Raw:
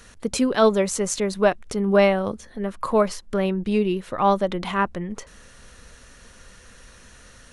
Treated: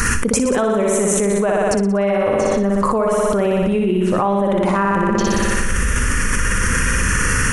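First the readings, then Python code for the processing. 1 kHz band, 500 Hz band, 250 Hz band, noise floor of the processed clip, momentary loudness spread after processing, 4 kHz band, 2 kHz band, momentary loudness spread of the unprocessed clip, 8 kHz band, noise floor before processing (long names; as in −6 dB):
+5.5 dB, +5.0 dB, +6.5 dB, −18 dBFS, 2 LU, +5.0 dB, +11.0 dB, 12 LU, +12.0 dB, −49 dBFS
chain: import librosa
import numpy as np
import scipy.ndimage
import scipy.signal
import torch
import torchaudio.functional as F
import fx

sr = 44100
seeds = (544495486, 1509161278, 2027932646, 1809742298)

y = fx.env_phaser(x, sr, low_hz=570.0, high_hz=4700.0, full_db=-22.5)
y = fx.room_flutter(y, sr, wall_m=10.3, rt60_s=1.1)
y = fx.env_flatten(y, sr, amount_pct=100)
y = y * 10.0 ** (-6.5 / 20.0)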